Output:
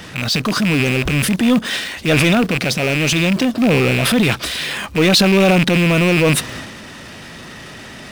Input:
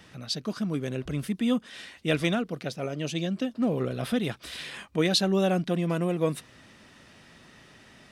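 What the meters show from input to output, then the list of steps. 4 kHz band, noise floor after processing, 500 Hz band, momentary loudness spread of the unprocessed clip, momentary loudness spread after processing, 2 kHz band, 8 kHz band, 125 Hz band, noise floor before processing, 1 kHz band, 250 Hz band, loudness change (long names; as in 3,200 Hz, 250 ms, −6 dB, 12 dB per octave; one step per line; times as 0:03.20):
+14.5 dB, −35 dBFS, +11.0 dB, 10 LU, 21 LU, +19.0 dB, +16.5 dB, +13.5 dB, −55 dBFS, +13.0 dB, +12.5 dB, +13.5 dB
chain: loose part that buzzes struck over −38 dBFS, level −21 dBFS
transient designer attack −3 dB, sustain +9 dB
in parallel at −7 dB: bit reduction 6 bits
on the sum: power curve on the samples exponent 0.7
level +5 dB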